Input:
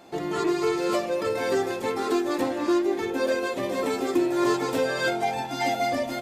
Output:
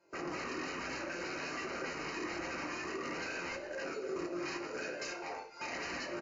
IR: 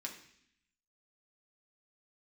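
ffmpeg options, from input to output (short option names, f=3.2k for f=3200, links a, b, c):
-filter_complex "[0:a]asettb=1/sr,asplit=3[a][b][c];[a]atrim=end=3.554[d];[b]atrim=start=3.55:end=5.72,asetpts=PTS-STARTPTS,afade=t=in:d=0.004:c=qsin,afade=t=out:st=2.166:d=0.004:c=qsin,highpass=f=1.1k:p=1[e];[c]atrim=start=5.716[f];[d][e]acrossfade=d=0.004:c1=hsin:c2=qsin[g];[g][f]acrossfade=d=0.004:c1=qsin:c2=hsin,afwtdn=0.0447,aecho=1:1:2:0.98,alimiter=limit=-21dB:level=0:latency=1:release=185,aeval=exprs='(mod(18.8*val(0)+1,2)-1)/18.8':c=same,flanger=delay=20:depth=7.7:speed=1.3,aeval=exprs='0.0178*(abs(mod(val(0)/0.0178+3,4)-2)-1)':c=same,asuperstop=centerf=3400:order=4:qfactor=3.2[h];[1:a]atrim=start_sample=2205,asetrate=57330,aresample=44100[i];[h][i]afir=irnorm=-1:irlink=0,volume=5dB" -ar 16000 -c:a libmp3lame -b:a 56k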